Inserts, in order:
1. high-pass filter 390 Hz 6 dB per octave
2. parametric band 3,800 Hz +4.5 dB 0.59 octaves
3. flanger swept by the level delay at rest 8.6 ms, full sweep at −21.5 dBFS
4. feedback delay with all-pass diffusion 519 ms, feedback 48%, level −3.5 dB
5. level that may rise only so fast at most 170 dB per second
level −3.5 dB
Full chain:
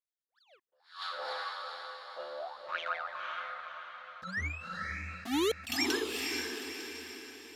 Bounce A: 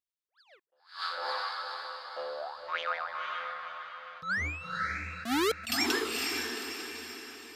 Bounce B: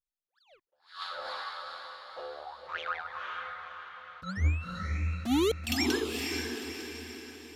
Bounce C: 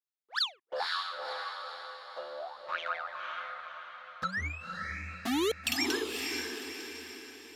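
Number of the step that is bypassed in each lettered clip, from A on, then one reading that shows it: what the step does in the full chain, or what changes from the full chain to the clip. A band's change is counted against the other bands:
3, 125 Hz band −2.5 dB
1, 125 Hz band +13.0 dB
5, 4 kHz band +2.0 dB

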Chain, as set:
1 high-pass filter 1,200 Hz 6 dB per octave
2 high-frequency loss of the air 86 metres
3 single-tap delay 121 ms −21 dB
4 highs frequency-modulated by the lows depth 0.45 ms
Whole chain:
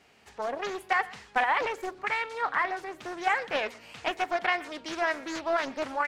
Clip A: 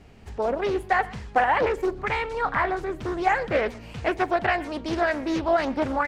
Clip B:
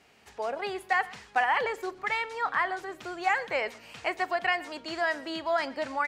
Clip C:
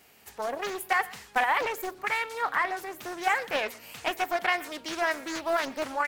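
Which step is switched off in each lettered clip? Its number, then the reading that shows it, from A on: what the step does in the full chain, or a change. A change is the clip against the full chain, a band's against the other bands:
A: 1, 125 Hz band +15.5 dB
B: 4, 8 kHz band −3.0 dB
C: 2, 8 kHz band +6.0 dB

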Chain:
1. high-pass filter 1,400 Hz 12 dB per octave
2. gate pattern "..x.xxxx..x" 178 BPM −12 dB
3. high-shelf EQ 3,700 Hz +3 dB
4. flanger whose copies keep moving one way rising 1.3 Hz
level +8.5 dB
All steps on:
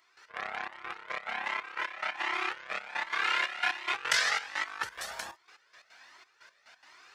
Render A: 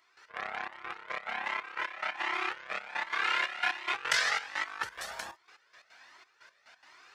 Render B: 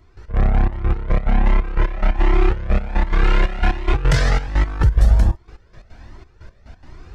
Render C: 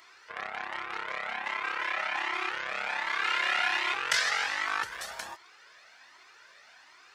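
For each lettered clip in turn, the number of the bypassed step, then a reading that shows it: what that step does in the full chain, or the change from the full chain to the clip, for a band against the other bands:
3, 8 kHz band −2.0 dB
1, 250 Hz band +26.5 dB
2, 8 kHz band −1.5 dB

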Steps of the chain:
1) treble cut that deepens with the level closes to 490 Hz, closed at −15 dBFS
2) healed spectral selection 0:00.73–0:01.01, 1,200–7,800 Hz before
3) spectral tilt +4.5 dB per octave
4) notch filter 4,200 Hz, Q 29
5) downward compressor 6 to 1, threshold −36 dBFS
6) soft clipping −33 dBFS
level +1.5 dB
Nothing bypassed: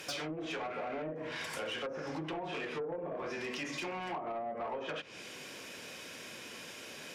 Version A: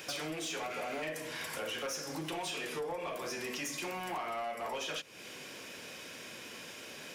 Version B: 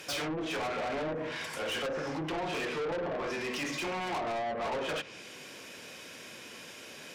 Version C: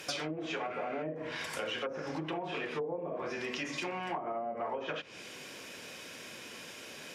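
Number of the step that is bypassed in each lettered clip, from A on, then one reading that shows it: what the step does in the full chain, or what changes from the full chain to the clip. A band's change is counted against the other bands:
1, 8 kHz band +7.0 dB
5, change in crest factor −4.5 dB
6, distortion level −16 dB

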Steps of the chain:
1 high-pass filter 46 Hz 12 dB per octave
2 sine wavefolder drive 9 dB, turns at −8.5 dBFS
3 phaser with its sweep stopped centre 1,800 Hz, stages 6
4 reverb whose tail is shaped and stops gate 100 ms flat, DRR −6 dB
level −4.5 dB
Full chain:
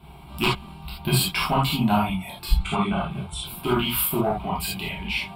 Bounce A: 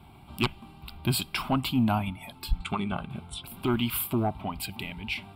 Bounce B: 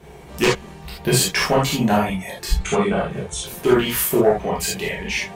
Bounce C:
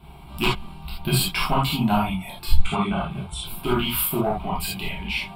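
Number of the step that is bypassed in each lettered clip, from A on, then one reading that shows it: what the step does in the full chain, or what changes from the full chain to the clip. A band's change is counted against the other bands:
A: 4, change in momentary loudness spread +3 LU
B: 3, 500 Hz band +7.5 dB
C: 1, change in crest factor +1.5 dB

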